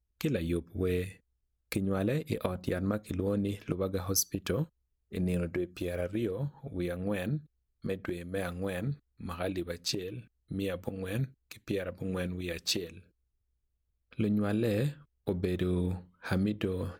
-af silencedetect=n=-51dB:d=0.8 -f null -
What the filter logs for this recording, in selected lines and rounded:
silence_start: 13.01
silence_end: 14.13 | silence_duration: 1.12